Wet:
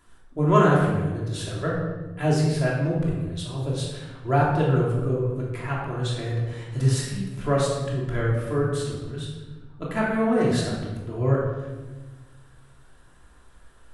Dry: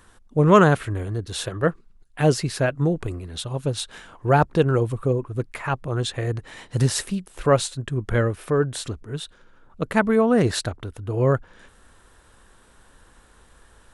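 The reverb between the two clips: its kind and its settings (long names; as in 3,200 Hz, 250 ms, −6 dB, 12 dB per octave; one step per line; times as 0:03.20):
rectangular room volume 870 cubic metres, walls mixed, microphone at 3 metres
level −10 dB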